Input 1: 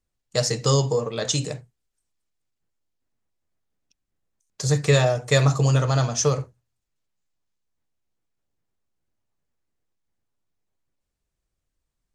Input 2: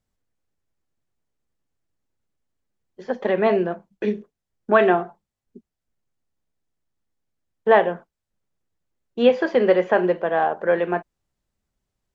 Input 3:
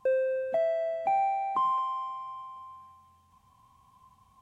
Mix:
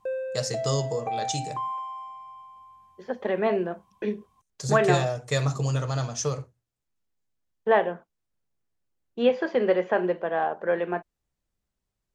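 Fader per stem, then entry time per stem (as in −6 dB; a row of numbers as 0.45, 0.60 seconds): −7.0, −5.5, −4.0 decibels; 0.00, 0.00, 0.00 seconds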